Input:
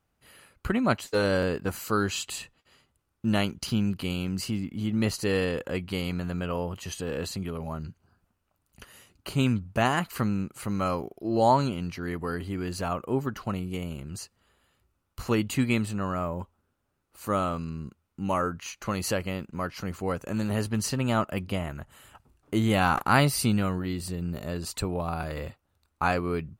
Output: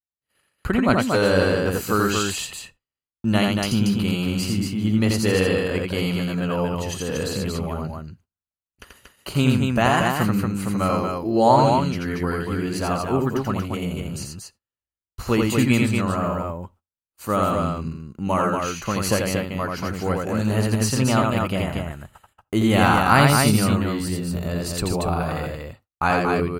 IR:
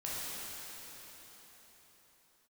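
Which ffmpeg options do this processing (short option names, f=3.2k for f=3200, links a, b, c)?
-filter_complex "[0:a]agate=range=-37dB:threshold=-50dB:ratio=16:detection=peak,aecho=1:1:84.55|233.2:0.708|0.631,asplit=2[a][b];[1:a]atrim=start_sample=2205,atrim=end_sample=3969[c];[b][c]afir=irnorm=-1:irlink=0,volume=-22.5dB[d];[a][d]amix=inputs=2:normalize=0,volume=4dB"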